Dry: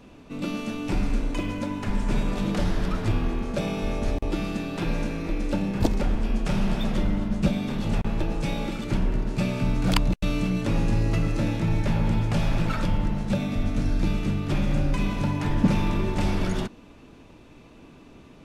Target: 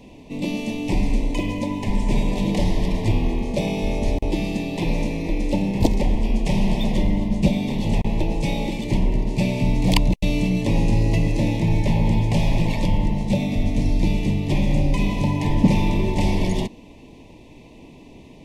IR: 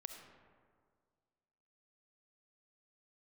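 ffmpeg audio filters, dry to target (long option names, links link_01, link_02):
-af "asuperstop=centerf=1400:order=8:qfactor=1.7,volume=4.5dB"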